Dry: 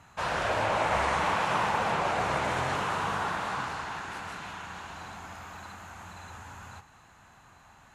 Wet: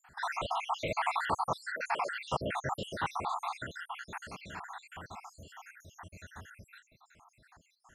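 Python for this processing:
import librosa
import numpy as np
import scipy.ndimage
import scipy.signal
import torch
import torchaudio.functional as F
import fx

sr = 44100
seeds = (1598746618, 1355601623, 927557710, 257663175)

y = fx.spec_dropout(x, sr, seeds[0], share_pct=75)
y = fx.highpass(y, sr, hz=510.0, slope=12, at=(1.66, 2.12))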